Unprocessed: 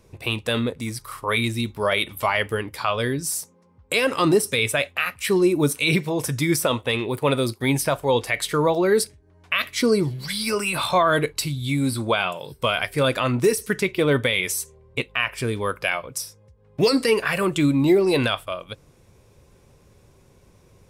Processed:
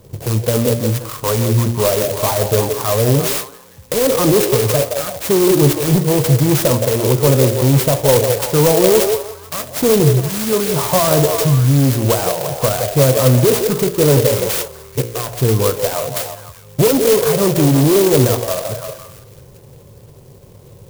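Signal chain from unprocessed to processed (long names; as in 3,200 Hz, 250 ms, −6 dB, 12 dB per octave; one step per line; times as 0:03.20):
hum removal 58.63 Hz, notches 14
soft clipping −20.5 dBFS, distortion −10 dB
octave-band graphic EQ 125/500/1,000/2,000/8,000 Hz +12/+7/+4/−11/+5 dB
on a send: echo through a band-pass that steps 169 ms, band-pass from 520 Hz, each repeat 0.7 octaves, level −4 dB
on the sum: converter with an unsteady clock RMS 0.12 ms
level +6 dB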